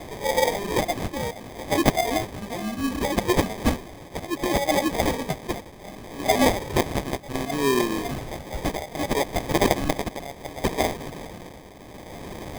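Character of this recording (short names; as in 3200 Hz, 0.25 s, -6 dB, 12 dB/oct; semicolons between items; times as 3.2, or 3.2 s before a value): a quantiser's noise floor 8-bit, dither triangular; phasing stages 2, 0.69 Hz, lowest notch 460–1800 Hz; tremolo triangle 0.66 Hz, depth 75%; aliases and images of a low sample rate 1400 Hz, jitter 0%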